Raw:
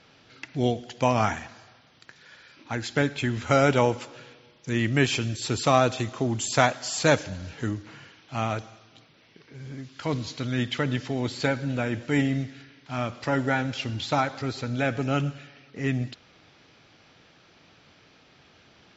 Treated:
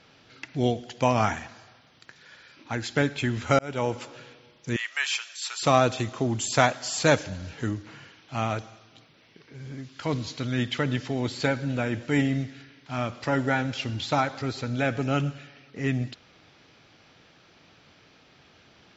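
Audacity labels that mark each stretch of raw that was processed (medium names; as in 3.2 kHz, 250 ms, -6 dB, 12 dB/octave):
3.590000	4.050000	fade in
4.760000	5.630000	high-pass 1 kHz 24 dB/octave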